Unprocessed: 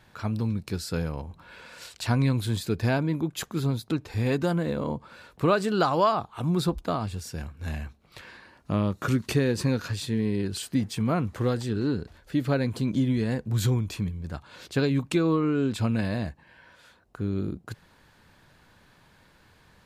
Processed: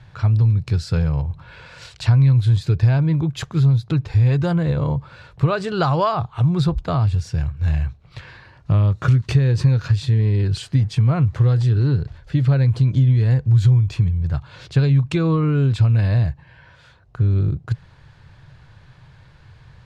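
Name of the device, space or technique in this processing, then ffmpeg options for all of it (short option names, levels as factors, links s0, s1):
jukebox: -af "lowpass=5600,lowshelf=f=170:t=q:w=3:g=8.5,acompressor=threshold=0.126:ratio=3,volume=1.68"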